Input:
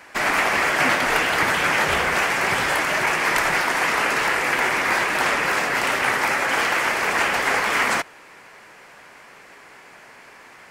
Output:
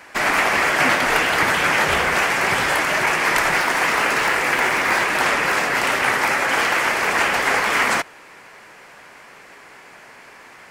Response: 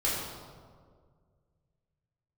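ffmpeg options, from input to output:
-filter_complex "[0:a]asettb=1/sr,asplit=3[a][b][c];[a]atrim=end=3.564[d];[b]atrim=start=3.56:end=5.04,asetpts=PTS-STARTPTS,afade=t=in:d=0.004:c=qsin,afade=t=out:st=1.476:d=0.004:c=qsin,acrusher=bits=8:mode=log:mix=0:aa=0.000001[e];[c]atrim=start=5.036[f];[d][e]acrossfade=d=0.004:c1=hsin:c2=qsin[g];[g][f]acrossfade=d=0.004:c1=qsin:c2=hsin,volume=2dB"

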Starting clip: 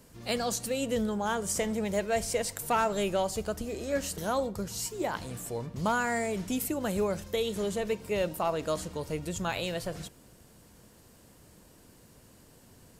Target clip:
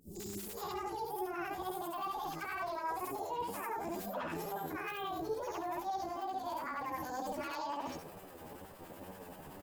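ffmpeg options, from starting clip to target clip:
-filter_complex "[0:a]afftfilt=real='re':imag='-im':win_size=8192:overlap=0.75,equalizer=f=330:w=0.43:g=7,acrossover=split=180|3400[a][b][c];[c]adelay=60[d];[b]adelay=630[e];[a][e][d]amix=inputs=3:normalize=0,areverse,acompressor=threshold=-42dB:ratio=8,areverse,alimiter=level_in=16dB:limit=-24dB:level=0:latency=1:release=75,volume=-16dB,acontrast=65,flanger=delay=17.5:depth=3.8:speed=1.6,asetrate=55563,aresample=44100,atempo=0.793701,acrossover=split=710[f][g];[f]aeval=exprs='val(0)*(1-0.5/2+0.5/2*cos(2*PI*7.8*n/s))':c=same[h];[g]aeval=exprs='val(0)*(1-0.5/2-0.5/2*cos(2*PI*7.8*n/s))':c=same[i];[h][i]amix=inputs=2:normalize=0,acrossover=split=1800[j][k];[k]aeval=exprs='(mod(211*val(0)+1,2)-1)/211':c=same[l];[j][l]amix=inputs=2:normalize=0,agate=range=-33dB:threshold=-55dB:ratio=3:detection=peak,asetrate=59535,aresample=44100,volume=7.5dB"

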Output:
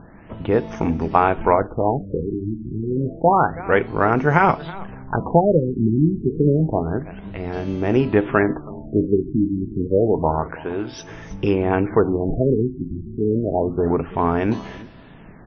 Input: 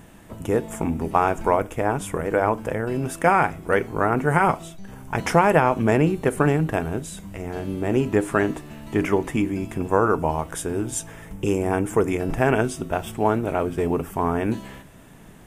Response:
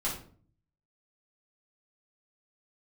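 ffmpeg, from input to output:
-filter_complex "[0:a]asettb=1/sr,asplit=3[a][b][c];[a]atrim=end=10.514[d];[b]atrim=start=10.51:end=11.1,asetpts=PTS-STARTPTS,afade=t=in:d=0.004:c=qsin,afade=t=out:st=0.586:d=0.004:c=qsin,lowshelf=f=210:g=-11[e];[c]atrim=start=11.096[f];[d][e]acrossfade=d=0.004:c1=hsin:c2=qsin[g];[g][f]acrossfade=d=0.004:c1=qsin:c2=hsin,asplit=2[h][i];[i]aecho=0:1:325:0.106[j];[h][j]amix=inputs=2:normalize=0,afftfilt=real='re*lt(b*sr/1024,370*pow(6600/370,0.5+0.5*sin(2*PI*0.29*pts/sr)))':imag='im*lt(b*sr/1024,370*pow(6600/370,0.5+0.5*sin(2*PI*0.29*pts/sr)))':win_size=1024:overlap=0.75,volume=3.5dB"

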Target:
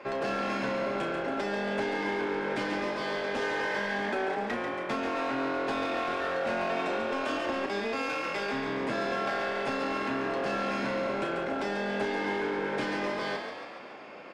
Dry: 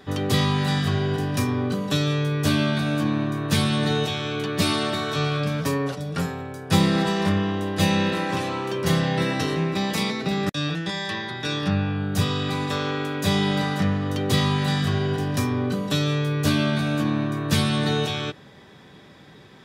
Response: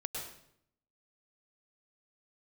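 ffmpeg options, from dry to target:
-filter_complex "[0:a]acrossover=split=250 2000:gain=0.126 1 0.0708[a][b][c];[a][b][c]amix=inputs=3:normalize=0,acompressor=threshold=-30dB:ratio=6,aresample=16000,aeval=exprs='0.0794*sin(PI/2*1.41*val(0)/0.0794)':c=same,aresample=44100,asetrate=60417,aresample=44100,asplit=2[d][e];[e]asoftclip=type=tanh:threshold=-34dB,volume=-5dB[f];[d][f]amix=inputs=2:normalize=0,asplit=2[g][h];[h]adelay=34,volume=-8dB[i];[g][i]amix=inputs=2:normalize=0,asplit=9[j][k][l][m][n][o][p][q][r];[k]adelay=140,afreqshift=43,volume=-6.5dB[s];[l]adelay=280,afreqshift=86,volume=-11.2dB[t];[m]adelay=420,afreqshift=129,volume=-16dB[u];[n]adelay=560,afreqshift=172,volume=-20.7dB[v];[o]adelay=700,afreqshift=215,volume=-25.4dB[w];[p]adelay=840,afreqshift=258,volume=-30.2dB[x];[q]adelay=980,afreqshift=301,volume=-34.9dB[y];[r]adelay=1120,afreqshift=344,volume=-39.6dB[z];[j][s][t][u][v][w][x][y][z]amix=inputs=9:normalize=0,volume=-6dB"

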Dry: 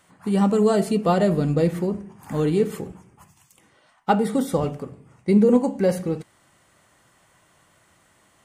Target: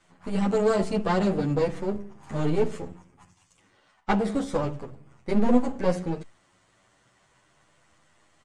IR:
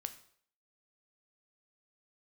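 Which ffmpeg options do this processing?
-filter_complex "[0:a]aeval=exprs='if(lt(val(0),0),0.251*val(0),val(0))':c=same,lowpass=f=8.1k:w=0.5412,lowpass=f=8.1k:w=1.3066,asplit=2[a][b];[b]adelay=9.3,afreqshift=0.35[c];[a][c]amix=inputs=2:normalize=1,volume=2.5dB"

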